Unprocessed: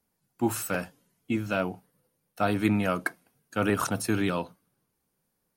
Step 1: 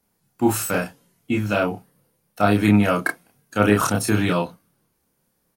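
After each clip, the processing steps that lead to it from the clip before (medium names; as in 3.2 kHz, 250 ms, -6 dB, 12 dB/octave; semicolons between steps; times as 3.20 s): doubling 29 ms -2 dB; trim +5.5 dB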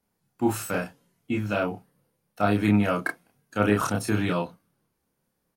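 treble shelf 5.4 kHz -5.5 dB; trim -5 dB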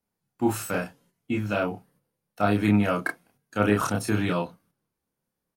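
gate -60 dBFS, range -7 dB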